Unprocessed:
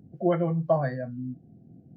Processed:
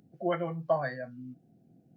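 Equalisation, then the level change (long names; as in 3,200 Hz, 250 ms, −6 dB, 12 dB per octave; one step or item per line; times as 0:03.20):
tilt shelving filter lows −7 dB, about 730 Hz
parametric band 72 Hz −11.5 dB 0.78 octaves
−3.0 dB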